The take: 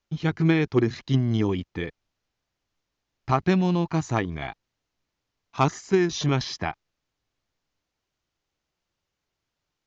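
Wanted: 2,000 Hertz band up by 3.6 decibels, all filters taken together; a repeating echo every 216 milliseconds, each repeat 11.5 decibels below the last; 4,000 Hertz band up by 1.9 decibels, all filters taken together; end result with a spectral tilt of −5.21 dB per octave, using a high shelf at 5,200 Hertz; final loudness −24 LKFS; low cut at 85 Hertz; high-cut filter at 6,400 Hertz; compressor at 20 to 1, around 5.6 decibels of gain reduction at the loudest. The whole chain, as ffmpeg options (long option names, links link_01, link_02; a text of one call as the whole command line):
ffmpeg -i in.wav -af "highpass=85,lowpass=6400,equalizer=frequency=2000:width_type=o:gain=4.5,equalizer=frequency=4000:width_type=o:gain=4.5,highshelf=frequency=5200:gain=-7.5,acompressor=threshold=-20dB:ratio=20,aecho=1:1:216|432|648:0.266|0.0718|0.0194,volume=4dB" out.wav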